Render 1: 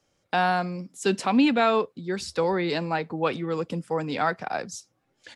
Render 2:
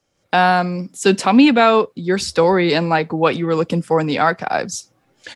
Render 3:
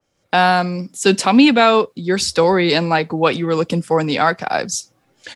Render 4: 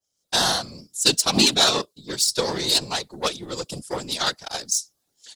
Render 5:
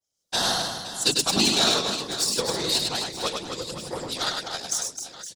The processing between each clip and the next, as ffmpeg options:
ffmpeg -i in.wav -af "dynaudnorm=framelen=140:gausssize=3:maxgain=11.5dB" out.wav
ffmpeg -i in.wav -af "adynamicequalizer=threshold=0.0282:dfrequency=2800:dqfactor=0.7:tfrequency=2800:tqfactor=0.7:attack=5:release=100:ratio=0.375:range=2.5:mode=boostabove:tftype=highshelf" out.wav
ffmpeg -i in.wav -af "aeval=exprs='0.841*(cos(1*acos(clip(val(0)/0.841,-1,1)))-cos(1*PI/2))+0.168*(cos(3*acos(clip(val(0)/0.841,-1,1)))-cos(3*PI/2))+0.0188*(cos(7*acos(clip(val(0)/0.841,-1,1)))-cos(7*PI/2))':channel_layout=same,aexciter=amount=8.7:drive=2.9:freq=3400,afftfilt=real='hypot(re,im)*cos(2*PI*random(0))':imag='hypot(re,im)*sin(2*PI*random(1))':win_size=512:overlap=0.75,volume=-1.5dB" out.wav
ffmpeg -i in.wav -af "aecho=1:1:100|260|516|925.6|1581:0.631|0.398|0.251|0.158|0.1,volume=-4.5dB" out.wav

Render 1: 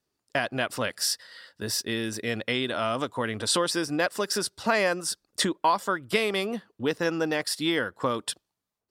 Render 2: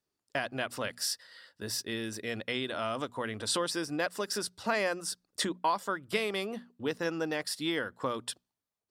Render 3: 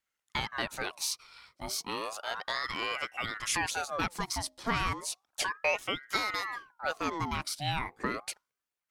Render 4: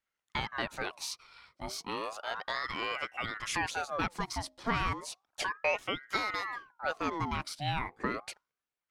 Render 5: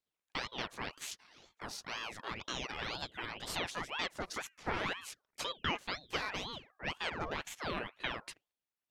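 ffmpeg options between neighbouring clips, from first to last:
ffmpeg -i in.wav -af "bandreject=frequency=60:width_type=h:width=6,bandreject=frequency=120:width_type=h:width=6,bandreject=frequency=180:width_type=h:width=6,bandreject=frequency=240:width_type=h:width=6,volume=-6dB" out.wav
ffmpeg -i in.wav -af "aeval=exprs='val(0)*sin(2*PI*1100*n/s+1100*0.6/0.33*sin(2*PI*0.33*n/s))':channel_layout=same,volume=2.5dB" out.wav
ffmpeg -i in.wav -af "lowpass=frequency=3300:poles=1" out.wav
ffmpeg -i in.wav -af "aeval=exprs='val(0)*sin(2*PI*1200*n/s+1200*0.85/2*sin(2*PI*2*n/s))':channel_layout=same,volume=-2dB" out.wav

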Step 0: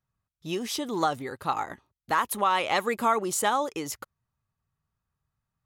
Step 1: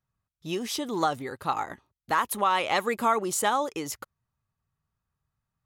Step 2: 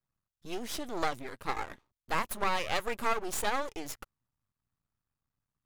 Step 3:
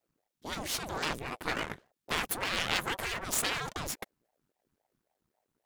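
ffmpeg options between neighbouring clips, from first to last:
ffmpeg -i in.wav -af anull out.wav
ffmpeg -i in.wav -af "aeval=exprs='max(val(0),0)':channel_layout=same,volume=-2dB" out.wav
ffmpeg -i in.wav -af "afftfilt=real='re*lt(hypot(re,im),0.0794)':imag='im*lt(hypot(re,im),0.0794)':win_size=1024:overlap=0.75,aeval=exprs='val(0)*sin(2*PI*450*n/s+450*0.7/3.7*sin(2*PI*3.7*n/s))':channel_layout=same,volume=8.5dB" out.wav

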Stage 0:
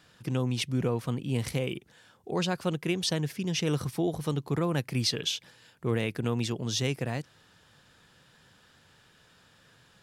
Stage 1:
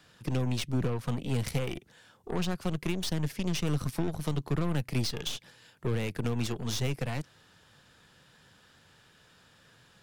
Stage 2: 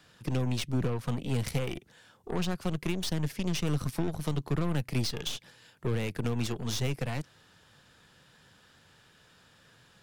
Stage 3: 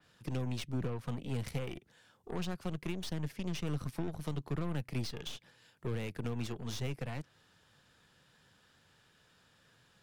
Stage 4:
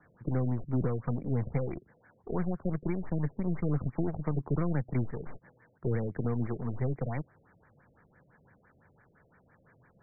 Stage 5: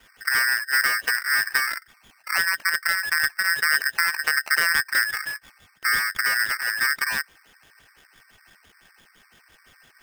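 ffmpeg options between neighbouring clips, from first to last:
ffmpeg -i in.wav -filter_complex "[0:a]aeval=exprs='0.15*(cos(1*acos(clip(val(0)/0.15,-1,1)))-cos(1*PI/2))+0.0188*(cos(8*acos(clip(val(0)/0.15,-1,1)))-cos(8*PI/2))':channel_layout=same,acrossover=split=210[link_01][link_02];[link_02]acompressor=threshold=-32dB:ratio=6[link_03];[link_01][link_03]amix=inputs=2:normalize=0" out.wav
ffmpeg -i in.wav -af anull out.wav
ffmpeg -i in.wav -af "adynamicequalizer=threshold=0.00282:dfrequency=3600:dqfactor=0.7:tfrequency=3600:tqfactor=0.7:attack=5:release=100:ratio=0.375:range=2.5:mode=cutabove:tftype=highshelf,volume=-6.5dB" out.wav
ffmpeg -i in.wav -af "afftfilt=real='re*lt(b*sr/1024,670*pow(2400/670,0.5+0.5*sin(2*PI*5.9*pts/sr)))':imag='im*lt(b*sr/1024,670*pow(2400/670,0.5+0.5*sin(2*PI*5.9*pts/sr)))':win_size=1024:overlap=0.75,volume=6.5dB" out.wav
ffmpeg -i in.wav -af "aeval=exprs='val(0)*sgn(sin(2*PI*1700*n/s))':channel_layout=same,volume=7.5dB" out.wav

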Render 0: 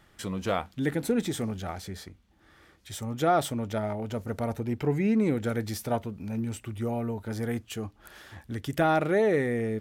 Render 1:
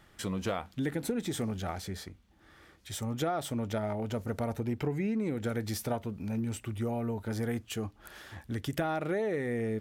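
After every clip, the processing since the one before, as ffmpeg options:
ffmpeg -i in.wav -af "acompressor=threshold=-28dB:ratio=10" out.wav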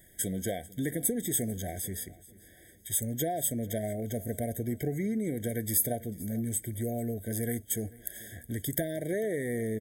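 ffmpeg -i in.wav -af "aecho=1:1:443|886|1329:0.0891|0.0339|0.0129,aexciter=amount=8.9:drive=4.5:freq=7100,afftfilt=real='re*eq(mod(floor(b*sr/1024/770),2),0)':imag='im*eq(mod(floor(b*sr/1024/770),2),0)':win_size=1024:overlap=0.75" out.wav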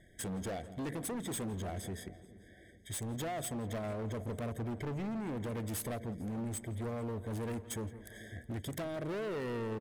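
ffmpeg -i in.wav -filter_complex "[0:a]adynamicsmooth=sensitivity=5:basefreq=4000,asoftclip=type=hard:threshold=-36dB,asplit=2[link_01][link_02];[link_02]adelay=168,lowpass=frequency=2100:poles=1,volume=-14.5dB,asplit=2[link_03][link_04];[link_04]adelay=168,lowpass=frequency=2100:poles=1,volume=0.49,asplit=2[link_05][link_06];[link_06]adelay=168,lowpass=frequency=2100:poles=1,volume=0.49,asplit=2[link_07][link_08];[link_08]adelay=168,lowpass=frequency=2100:poles=1,volume=0.49,asplit=2[link_09][link_10];[link_10]adelay=168,lowpass=frequency=2100:poles=1,volume=0.49[link_11];[link_01][link_03][link_05][link_07][link_09][link_11]amix=inputs=6:normalize=0" out.wav

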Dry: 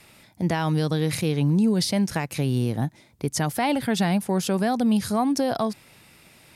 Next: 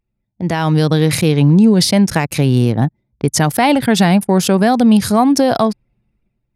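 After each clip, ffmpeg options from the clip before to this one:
ffmpeg -i in.wav -af "anlmdn=2.51,dynaudnorm=framelen=160:gausssize=7:maxgain=12dB" out.wav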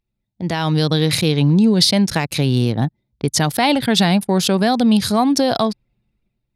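ffmpeg -i in.wav -af "equalizer=frequency=3900:width_type=o:width=0.78:gain=9,volume=-4dB" out.wav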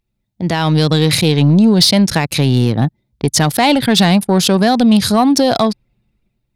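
ffmpeg -i in.wav -af "acontrast=58,volume=-1dB" out.wav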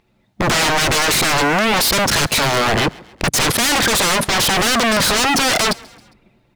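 ffmpeg -i in.wav -filter_complex "[0:a]asplit=2[link_01][link_02];[link_02]highpass=frequency=720:poles=1,volume=23dB,asoftclip=type=tanh:threshold=-1.5dB[link_03];[link_01][link_03]amix=inputs=2:normalize=0,lowpass=frequency=1100:poles=1,volume=-6dB,aeval=exprs='0.112*(abs(mod(val(0)/0.112+3,4)-2)-1)':channel_layout=same,asplit=4[link_04][link_05][link_06][link_07];[link_05]adelay=135,afreqshift=36,volume=-23.5dB[link_08];[link_06]adelay=270,afreqshift=72,volume=-29.5dB[link_09];[link_07]adelay=405,afreqshift=108,volume=-35.5dB[link_10];[link_04][link_08][link_09][link_10]amix=inputs=4:normalize=0,volume=8dB" out.wav

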